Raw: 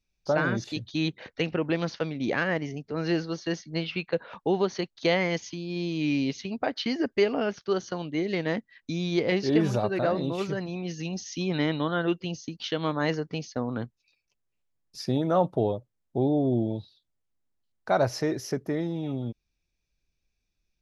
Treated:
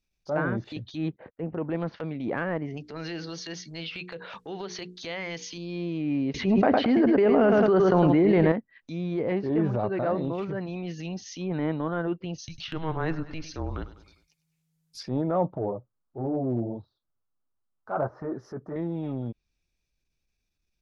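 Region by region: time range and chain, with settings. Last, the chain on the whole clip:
0:01.16–0:01.58: noise gate −50 dBFS, range −23 dB + low-pass filter 1,000 Hz
0:02.77–0:05.58: high-shelf EQ 2,100 Hz +10.5 dB + mains-hum notches 60/120/180/240/300/360/420/480 Hz + downward compressor 3 to 1, threshold −32 dBFS
0:06.34–0:08.52: repeating echo 107 ms, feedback 32%, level −10.5 dB + envelope flattener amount 100%
0:09.79–0:10.45: high-shelf EQ 2,300 Hz +8 dB + notch filter 1,600 Hz, Q 27
0:12.38–0:15.03: high-shelf EQ 3,800 Hz +12 dB + frequency shifter −160 Hz + repeating echo 100 ms, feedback 48%, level −16.5 dB
0:15.56–0:18.76: high shelf with overshoot 1,800 Hz −12 dB, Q 3 + flanger 1.5 Hz, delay 0.8 ms, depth 8.8 ms, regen −26%
whole clip: treble cut that deepens with the level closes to 1,400 Hz, closed at −25 dBFS; transient designer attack −8 dB, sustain +1 dB

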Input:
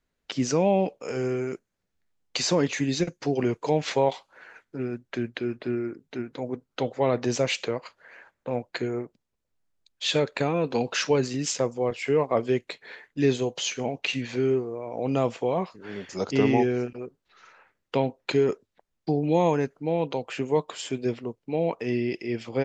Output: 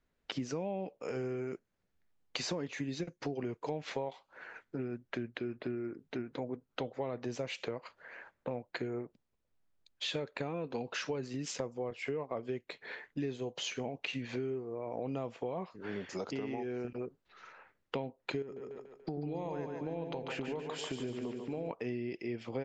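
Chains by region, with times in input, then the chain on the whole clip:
0:16.07–0:16.85: low-shelf EQ 130 Hz −10 dB + downward compressor 2 to 1, threshold −31 dBFS
0:18.42–0:21.71: downward compressor 2.5 to 1, threshold −33 dBFS + echo with a time of its own for lows and highs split 440 Hz, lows 88 ms, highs 144 ms, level −5.5 dB
whole clip: low-pass filter 3,200 Hz 6 dB per octave; downward compressor 6 to 1, threshold −35 dBFS

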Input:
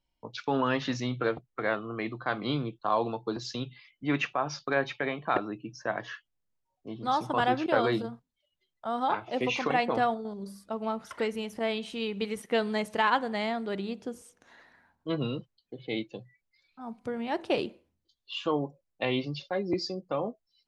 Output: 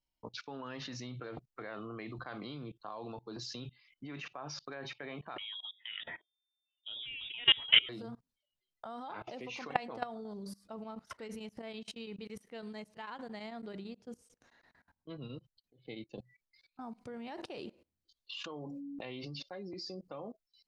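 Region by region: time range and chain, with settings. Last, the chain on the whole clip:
0:05.38–0:07.89: low-shelf EQ 73 Hz +4.5 dB + hum removal 79.15 Hz, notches 5 + voice inversion scrambler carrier 3,600 Hz
0:10.76–0:16.18: low-shelf EQ 170 Hz +7 dB + shaped tremolo triangle 9 Hz, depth 95%
0:18.44–0:19.42: downward expander −60 dBFS + hum removal 56.4 Hz, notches 5 + background raised ahead of every attack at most 28 dB per second
whole clip: parametric band 4,900 Hz +4.5 dB 0.86 octaves; notch filter 3,400 Hz, Q 24; output level in coarse steps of 23 dB; level +2.5 dB

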